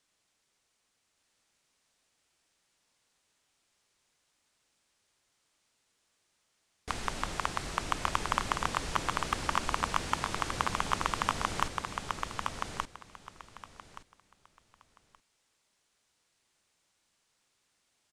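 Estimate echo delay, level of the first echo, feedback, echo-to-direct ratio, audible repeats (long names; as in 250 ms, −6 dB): 1,174 ms, −4.0 dB, 20%, −4.0 dB, 3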